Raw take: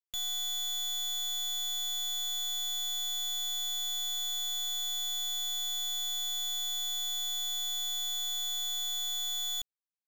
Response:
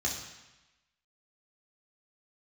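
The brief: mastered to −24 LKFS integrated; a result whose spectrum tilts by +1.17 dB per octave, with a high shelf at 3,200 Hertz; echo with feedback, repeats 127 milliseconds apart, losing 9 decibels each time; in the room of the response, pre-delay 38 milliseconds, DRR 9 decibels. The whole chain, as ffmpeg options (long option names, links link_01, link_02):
-filter_complex "[0:a]highshelf=frequency=3200:gain=-5,aecho=1:1:127|254|381|508:0.355|0.124|0.0435|0.0152,asplit=2[link_01][link_02];[1:a]atrim=start_sample=2205,adelay=38[link_03];[link_02][link_03]afir=irnorm=-1:irlink=0,volume=-14.5dB[link_04];[link_01][link_04]amix=inputs=2:normalize=0,volume=7.5dB"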